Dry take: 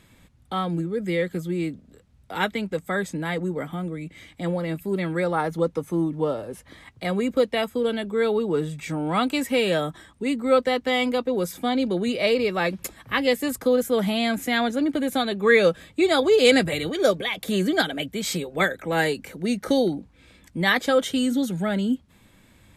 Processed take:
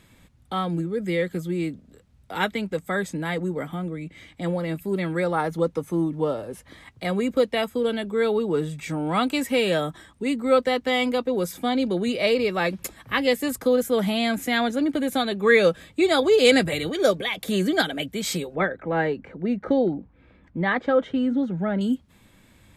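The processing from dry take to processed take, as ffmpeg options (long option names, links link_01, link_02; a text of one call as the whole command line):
ffmpeg -i in.wav -filter_complex "[0:a]asettb=1/sr,asplit=3[link_01][link_02][link_03];[link_01]atrim=end=3.784[link_04];[link_02]atrim=start=3.78:end=4.42,asetpts=PTS-STARTPTS,afade=type=in:duration=0.004:curve=qsin,afade=type=out:start_time=0.636:duration=0.004:curve=qsin,highshelf=frequency=8500:gain=-8[link_05];[link_03]atrim=start=4.416[link_06];[link_04][link_05]acrossfade=duration=0.004:curve1=hsin:curve2=qsin[link_07];[link_07][link_06]acrossfade=duration=0.004:curve1=qsin:curve2=hsin,asettb=1/sr,asplit=3[link_08][link_09][link_10];[link_08]atrim=end=18.554[link_11];[link_09]atrim=start=18.55:end=21.81,asetpts=PTS-STARTPTS,afade=type=in:duration=0.004:curve=qsin,afade=type=out:start_time=3.256:duration=0.004:curve=qsin,lowpass=1600[link_12];[link_10]atrim=start=21.806[link_13];[link_11][link_12]acrossfade=duration=0.004:curve1=hsin:curve2=qsin[link_14];[link_14][link_13]acrossfade=duration=0.004:curve1=qsin:curve2=hsin" out.wav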